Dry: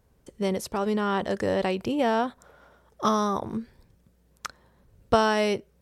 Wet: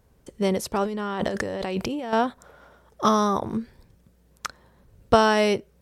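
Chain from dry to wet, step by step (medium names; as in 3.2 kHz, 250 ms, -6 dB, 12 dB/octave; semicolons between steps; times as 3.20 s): 0.85–2.13 s: compressor with a negative ratio -32 dBFS, ratio -1; trim +3.5 dB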